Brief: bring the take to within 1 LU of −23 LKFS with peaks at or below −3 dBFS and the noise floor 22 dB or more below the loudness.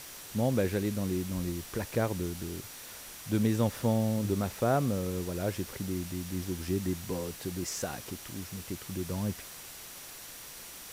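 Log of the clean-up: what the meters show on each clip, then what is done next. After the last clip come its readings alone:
interfering tone 5,800 Hz; level of the tone −57 dBFS; background noise floor −46 dBFS; target noise floor −55 dBFS; integrated loudness −33.0 LKFS; sample peak −16.5 dBFS; target loudness −23.0 LKFS
→ notch filter 5,800 Hz, Q 30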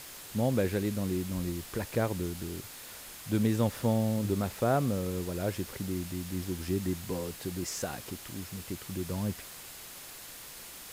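interfering tone none found; background noise floor −47 dBFS; target noise floor −55 dBFS
→ noise reduction from a noise print 8 dB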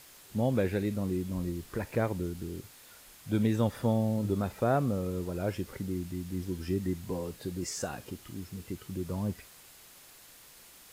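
background noise floor −55 dBFS; integrated loudness −33.0 LKFS; sample peak −16.5 dBFS; target loudness −23.0 LKFS
→ level +10 dB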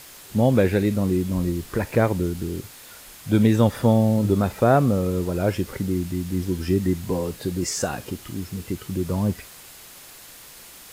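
integrated loudness −23.0 LKFS; sample peak −6.5 dBFS; background noise floor −45 dBFS

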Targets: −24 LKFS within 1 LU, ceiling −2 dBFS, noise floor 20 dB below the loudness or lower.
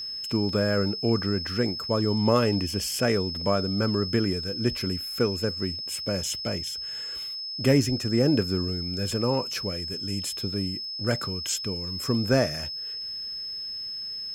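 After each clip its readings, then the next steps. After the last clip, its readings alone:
crackle rate 20 per second; interfering tone 5,200 Hz; level of the tone −32 dBFS; integrated loudness −26.5 LKFS; sample peak −7.5 dBFS; target loudness −24.0 LKFS
→ click removal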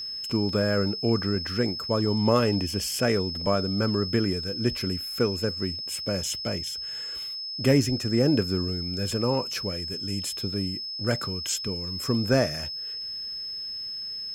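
crackle rate 0.070 per second; interfering tone 5,200 Hz; level of the tone −32 dBFS
→ notch filter 5,200 Hz, Q 30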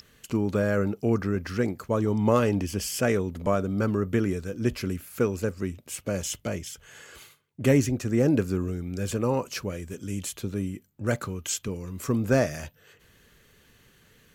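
interfering tone none found; integrated loudness −27.5 LKFS; sample peak −7.5 dBFS; target loudness −24.0 LKFS
→ level +3.5 dB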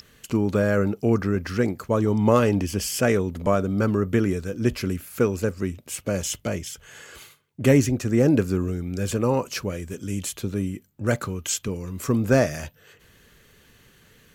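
integrated loudness −24.0 LKFS; sample peak −4.0 dBFS; background noise floor −57 dBFS

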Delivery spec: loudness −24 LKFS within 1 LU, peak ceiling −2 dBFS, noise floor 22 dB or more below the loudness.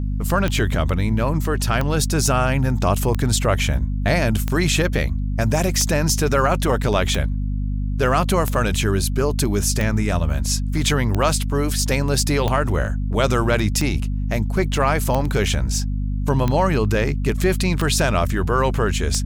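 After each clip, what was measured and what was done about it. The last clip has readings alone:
number of clicks 15; mains hum 50 Hz; hum harmonics up to 250 Hz; level of the hum −20 dBFS; integrated loudness −20.5 LKFS; sample peak −4.5 dBFS; target loudness −24.0 LKFS
→ click removal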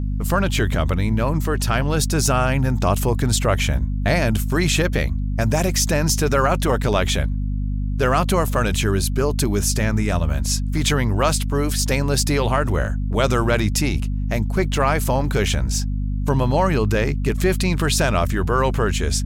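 number of clicks 0; mains hum 50 Hz; hum harmonics up to 250 Hz; level of the hum −20 dBFS
→ hum removal 50 Hz, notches 5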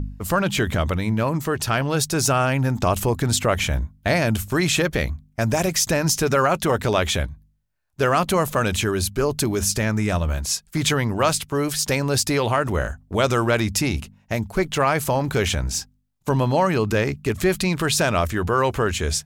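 mains hum none found; integrated loudness −21.5 LKFS; sample peak −6.0 dBFS; target loudness −24.0 LKFS
→ level −2.5 dB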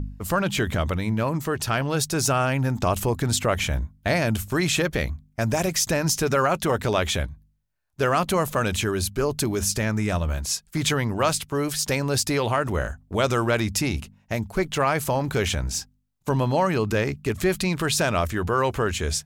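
integrated loudness −24.0 LKFS; sample peak −8.5 dBFS; background noise floor −64 dBFS

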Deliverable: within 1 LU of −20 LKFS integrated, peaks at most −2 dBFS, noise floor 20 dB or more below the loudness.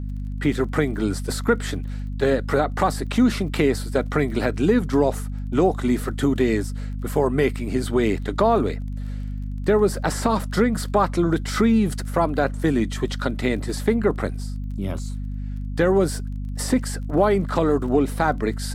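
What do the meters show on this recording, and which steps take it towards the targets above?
crackle rate 23 per second; mains hum 50 Hz; hum harmonics up to 250 Hz; level of the hum −26 dBFS; integrated loudness −22.5 LKFS; sample peak −6.0 dBFS; target loudness −20.0 LKFS
→ click removal
hum removal 50 Hz, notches 5
level +2.5 dB

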